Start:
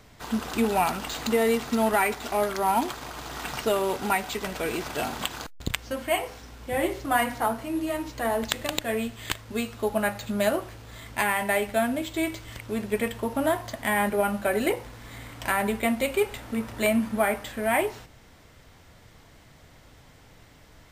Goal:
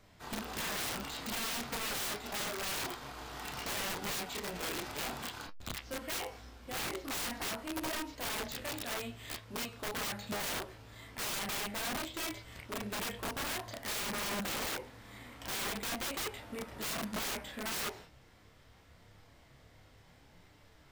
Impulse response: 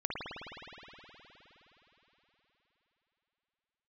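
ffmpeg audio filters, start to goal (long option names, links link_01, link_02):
-filter_complex "[0:a]flanger=delay=10:depth=9.8:regen=49:speed=0.73:shape=sinusoidal[link_01];[1:a]atrim=start_sample=2205,atrim=end_sample=3087,asetrate=79380,aresample=44100[link_02];[link_01][link_02]afir=irnorm=-1:irlink=0,aeval=exprs='(mod(39.8*val(0)+1,2)-1)/39.8':channel_layout=same"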